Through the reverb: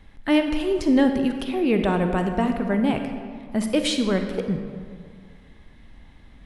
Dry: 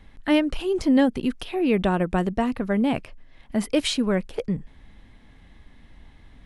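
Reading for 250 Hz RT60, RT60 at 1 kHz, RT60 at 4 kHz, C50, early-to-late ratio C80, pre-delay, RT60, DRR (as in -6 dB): 2.1 s, 2.0 s, 1.2 s, 6.5 dB, 7.5 dB, 36 ms, 2.0 s, 5.5 dB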